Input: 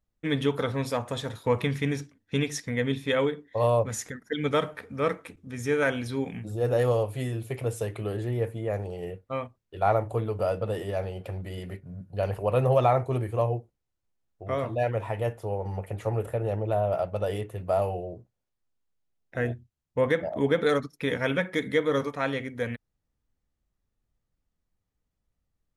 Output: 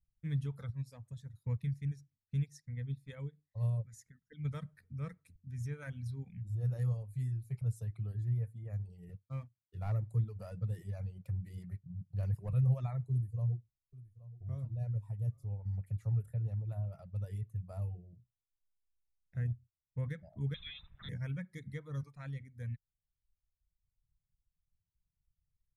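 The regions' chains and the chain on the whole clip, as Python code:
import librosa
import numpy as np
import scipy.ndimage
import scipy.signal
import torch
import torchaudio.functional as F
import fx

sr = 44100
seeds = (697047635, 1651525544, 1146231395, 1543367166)

y = fx.chain(x, sr, fx.dynamic_eq(hz=1300.0, q=1.8, threshold_db=-42.0, ratio=4.0, max_db=-4),
    fx.upward_expand(threshold_db=-33.0, expansion=1.5), at=(0.7, 4.45))
y = fx.chain(y, sr, fx.highpass(hz=100.0, slope=12),
    fx.leveller(passes=1), at=(9.09, 12.53))
y = fx.chain(y, sr, fx.peak_eq(hz=1900.0, db=-12.0, octaves=1.5),
    fx.echo_single(ms=825, db=-18.0), at=(13.1, 15.49))
y = fx.chain(y, sr, fx.crossing_spikes(level_db=-17.0),
    fx.freq_invert(carrier_hz=3800), at=(20.54, 21.09))
y = fx.curve_eq(y, sr, hz=(150.0, 290.0, 780.0, 2600.0), db=(0, -24, -27, -15))
y = fx.dereverb_blind(y, sr, rt60_s=1.2)
y = fx.peak_eq(y, sr, hz=3000.0, db=-12.5, octaves=0.65)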